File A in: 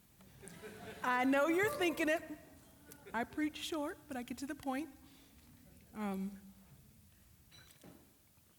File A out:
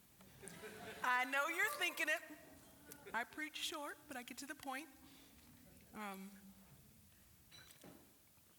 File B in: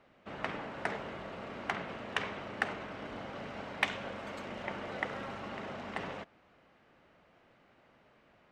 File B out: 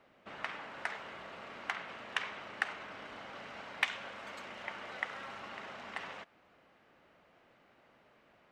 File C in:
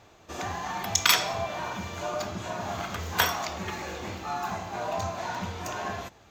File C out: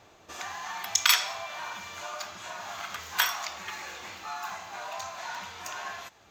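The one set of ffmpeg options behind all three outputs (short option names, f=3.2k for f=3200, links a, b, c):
-filter_complex "[0:a]lowshelf=f=200:g=-6,acrossover=split=880[a][b];[a]acompressor=threshold=-51dB:ratio=10[c];[c][b]amix=inputs=2:normalize=0"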